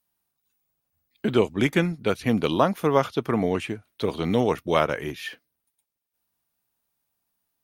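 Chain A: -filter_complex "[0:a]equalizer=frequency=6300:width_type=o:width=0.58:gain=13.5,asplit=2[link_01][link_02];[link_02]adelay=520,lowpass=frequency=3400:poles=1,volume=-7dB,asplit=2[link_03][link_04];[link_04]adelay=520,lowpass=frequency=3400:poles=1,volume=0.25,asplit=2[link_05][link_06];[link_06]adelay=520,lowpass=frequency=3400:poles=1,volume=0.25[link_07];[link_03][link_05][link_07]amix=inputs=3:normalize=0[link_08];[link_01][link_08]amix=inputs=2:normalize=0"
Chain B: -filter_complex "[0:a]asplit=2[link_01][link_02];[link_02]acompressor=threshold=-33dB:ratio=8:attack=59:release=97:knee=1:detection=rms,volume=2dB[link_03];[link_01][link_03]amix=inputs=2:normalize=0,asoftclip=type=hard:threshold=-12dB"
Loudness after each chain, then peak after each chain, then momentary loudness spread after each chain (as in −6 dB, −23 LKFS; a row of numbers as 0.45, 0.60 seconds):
−24.0, −23.0 LKFS; −3.0, −12.0 dBFS; 11, 7 LU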